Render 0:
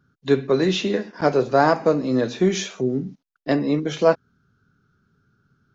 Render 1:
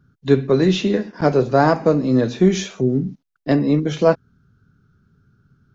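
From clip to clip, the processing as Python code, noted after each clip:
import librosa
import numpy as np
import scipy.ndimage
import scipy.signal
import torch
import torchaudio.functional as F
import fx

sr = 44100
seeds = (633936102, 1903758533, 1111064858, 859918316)

y = fx.low_shelf(x, sr, hz=220.0, db=11.0)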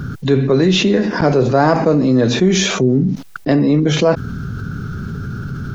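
y = fx.env_flatten(x, sr, amount_pct=70)
y = y * librosa.db_to_amplitude(-1.0)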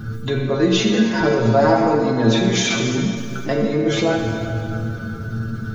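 y = fx.stiff_resonator(x, sr, f0_hz=110.0, decay_s=0.23, stiffness=0.002)
y = fx.rev_plate(y, sr, seeds[0], rt60_s=2.9, hf_ratio=0.75, predelay_ms=0, drr_db=1.5)
y = y * librosa.db_to_amplitude(5.0)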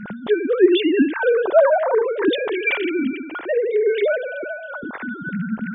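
y = fx.sine_speech(x, sr)
y = y * librosa.db_to_amplitude(-1.0)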